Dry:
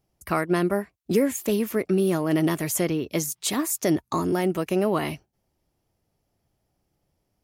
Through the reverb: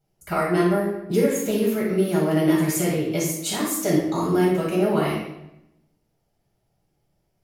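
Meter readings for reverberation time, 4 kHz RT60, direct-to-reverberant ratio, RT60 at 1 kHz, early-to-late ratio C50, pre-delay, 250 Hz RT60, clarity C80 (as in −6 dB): 0.85 s, 0.70 s, −6.0 dB, 0.80 s, 1.0 dB, 6 ms, 1.1 s, 5.0 dB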